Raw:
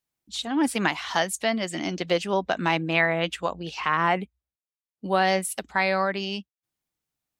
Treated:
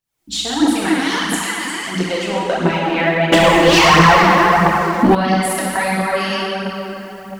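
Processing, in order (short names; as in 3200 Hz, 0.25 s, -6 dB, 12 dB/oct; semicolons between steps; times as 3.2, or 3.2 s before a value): recorder AGC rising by 63 dB/s; 0.98–1.88 steep high-pass 990 Hz 48 dB/oct; plate-style reverb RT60 4.2 s, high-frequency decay 0.5×, DRR -6.5 dB; 3.32–5.15 sample leveller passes 3; phaser 1.5 Hz, delay 4 ms, feedback 47%; gain -3 dB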